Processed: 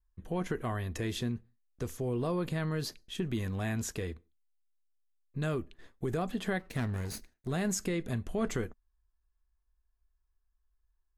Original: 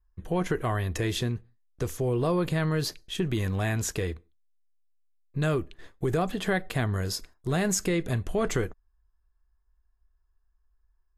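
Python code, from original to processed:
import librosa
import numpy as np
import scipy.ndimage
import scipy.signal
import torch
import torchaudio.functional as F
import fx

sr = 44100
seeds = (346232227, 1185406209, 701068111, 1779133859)

y = fx.lower_of_two(x, sr, delay_ms=0.47, at=(6.59, 7.48))
y = fx.peak_eq(y, sr, hz=230.0, db=7.5, octaves=0.3)
y = y * librosa.db_to_amplitude(-7.0)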